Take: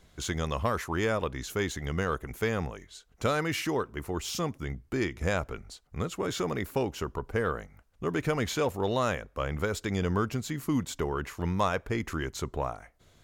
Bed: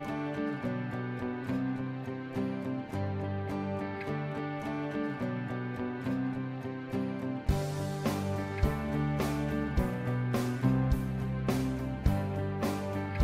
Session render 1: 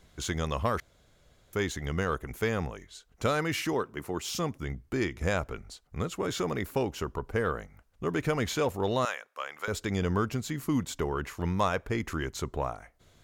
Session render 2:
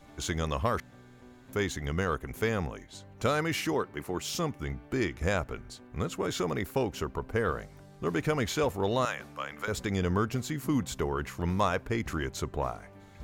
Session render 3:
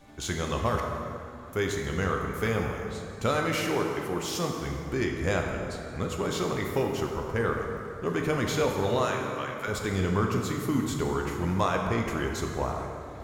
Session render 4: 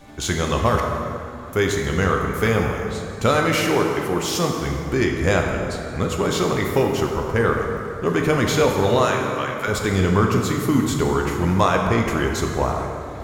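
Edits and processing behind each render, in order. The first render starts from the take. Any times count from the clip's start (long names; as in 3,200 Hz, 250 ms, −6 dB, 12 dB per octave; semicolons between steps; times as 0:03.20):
0:00.80–0:01.53: fill with room tone; 0:03.73–0:04.30: high-pass filter 120 Hz; 0:09.05–0:09.68: high-pass filter 920 Hz
mix in bed −18 dB
dense smooth reverb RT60 2.8 s, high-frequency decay 0.6×, DRR 1 dB
level +8.5 dB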